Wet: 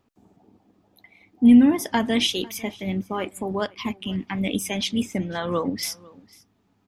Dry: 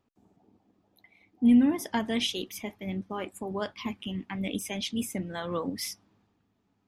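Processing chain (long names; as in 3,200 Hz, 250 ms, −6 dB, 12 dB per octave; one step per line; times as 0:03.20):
0:03.48–0:04.11: transient designer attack −2 dB, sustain −8 dB
0:05.02–0:05.83: moving average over 4 samples
single-tap delay 499 ms −23.5 dB
level +7 dB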